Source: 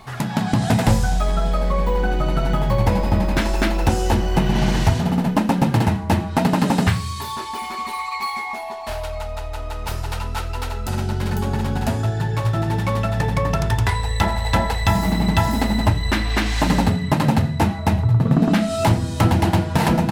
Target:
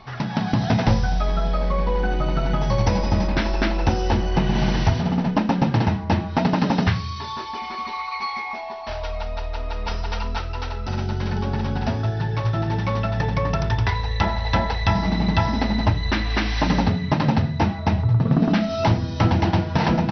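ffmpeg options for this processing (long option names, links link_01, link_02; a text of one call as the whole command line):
ffmpeg -i in.wav -filter_complex "[0:a]asettb=1/sr,asplit=3[link_01][link_02][link_03];[link_01]atrim=end=2.614[link_04];[link_02]atrim=start=2.61:end=3.28,asetpts=PTS-STARTPTS,afade=type=in:duration=0.004:curve=qsin,afade=type=out:start_time=0.666:duration=0.004:curve=qsin,lowpass=frequency=6500:width_type=q:width=10[link_05];[link_03]atrim=start=3.276[link_06];[link_04][link_05]acrossfade=duration=0.004:curve1=hsin:curve2=qsin[link_07];[link_07][link_06]acrossfade=duration=0.004:curve1=qsin:curve2=hsin,asettb=1/sr,asplit=3[link_08][link_09][link_10];[link_08]atrim=end=9.024[link_11];[link_09]atrim=start=9.02:end=10.38,asetpts=PTS-STARTPTS,afade=type=in:duration=0.004:curve=qsin,afade=type=out:start_time=1.356:duration=0.004:curve=qsin,aecho=1:1:4.3:0.86,atrim=end_sample=59976[link_12];[link_10]atrim=start=10.376[link_13];[link_11][link_12]acrossfade=duration=0.004:curve1=hsin:curve2=qsin[link_14];[link_14][link_13]acrossfade=duration=0.004:curve1=qsin:curve2=hsin,volume=-2dB" -ar 32000 -c:a mp2 -b:a 48k out.mp2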